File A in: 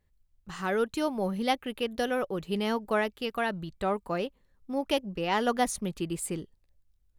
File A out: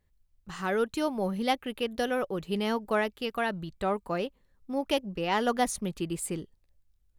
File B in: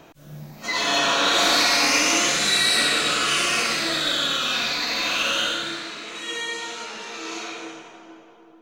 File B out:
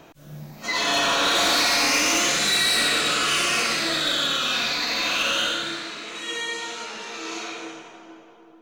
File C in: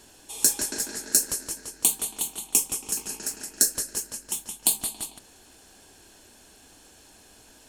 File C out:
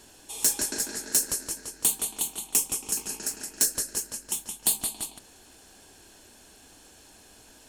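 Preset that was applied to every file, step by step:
hard clipping −16 dBFS

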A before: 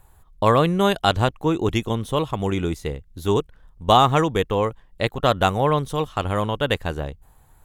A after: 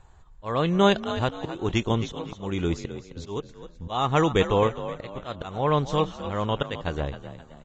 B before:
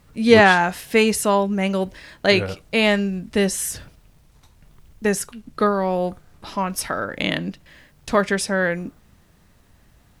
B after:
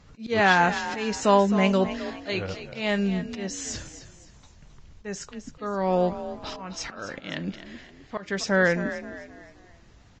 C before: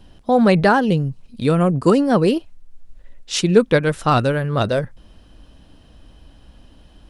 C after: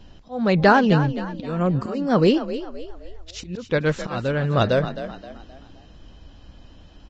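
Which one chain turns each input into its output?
volume swells 396 ms
echo with shifted repeats 262 ms, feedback 38%, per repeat +41 Hz, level −12 dB
Ogg Vorbis 32 kbit/s 16,000 Hz

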